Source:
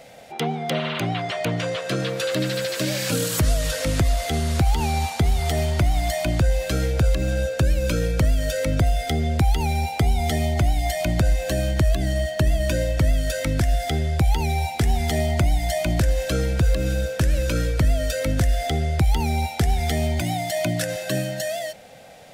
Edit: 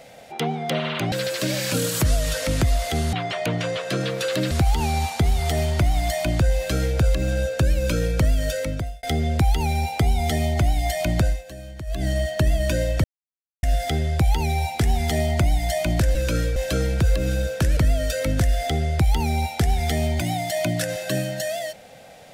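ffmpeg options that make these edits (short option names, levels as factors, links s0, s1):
-filter_complex "[0:a]asplit=12[s0][s1][s2][s3][s4][s5][s6][s7][s8][s9][s10][s11];[s0]atrim=end=1.122[s12];[s1]atrim=start=2.498:end=4.512[s13];[s2]atrim=start=1.118:end=2.502[s14];[s3]atrim=start=4.508:end=9.03,asetpts=PTS-STARTPTS,afade=t=out:st=3.972:d=0.55[s15];[s4]atrim=start=9.03:end=11.43,asetpts=PTS-STARTPTS,afade=t=in:d=0.004:c=hsin,afade=t=out:st=2.2:d=0.2:silence=0.177828[s16];[s5]atrim=start=11.43:end=11.86,asetpts=PTS-STARTPTS,volume=0.178[s17];[s6]atrim=start=11.86:end=13.04,asetpts=PTS-STARTPTS,afade=t=in:d=0.2:silence=0.177828,afade=t=out:st=1.176:d=0.004:c=hsin[s18];[s7]atrim=start=13.04:end=13.63,asetpts=PTS-STARTPTS,volume=0[s19];[s8]atrim=start=13.63:end=16.152,asetpts=PTS-STARTPTS,afade=t=in:d=0.004:c=hsin[s20];[s9]atrim=start=17.358:end=17.772[s21];[s10]atrim=start=16.148:end=17.362[s22];[s11]atrim=start=17.768[s23];[s12][s13]acrossfade=d=0.004:c1=hsin:c2=hsin[s24];[s24][s14]acrossfade=d=0.004:c1=hsin:c2=hsin[s25];[s15][s16][s17][s18][s19][s20]concat=n=6:v=0:a=1[s26];[s25][s26]acrossfade=d=0.004:c1=hsin:c2=hsin[s27];[s27][s21]acrossfade=d=0.004:c1=hsin:c2=hsin[s28];[s28][s22]acrossfade=d=0.004:c1=hsin:c2=hsin[s29];[s29][s23]acrossfade=d=0.004:c1=hsin:c2=hsin"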